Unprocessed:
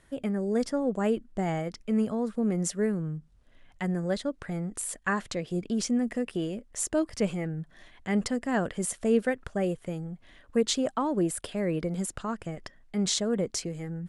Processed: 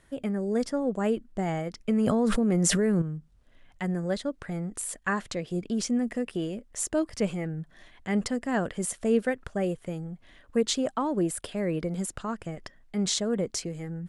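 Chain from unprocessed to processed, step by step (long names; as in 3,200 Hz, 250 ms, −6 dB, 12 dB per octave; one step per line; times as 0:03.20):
0:01.88–0:03.02: envelope flattener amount 100%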